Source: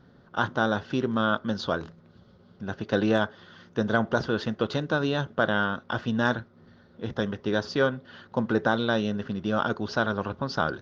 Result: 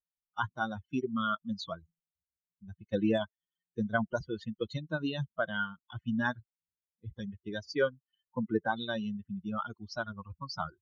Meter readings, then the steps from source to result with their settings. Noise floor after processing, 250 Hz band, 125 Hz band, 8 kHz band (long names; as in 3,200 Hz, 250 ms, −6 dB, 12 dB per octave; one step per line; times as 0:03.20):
below −85 dBFS, −7.0 dB, −8.0 dB, can't be measured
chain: spectral dynamics exaggerated over time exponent 3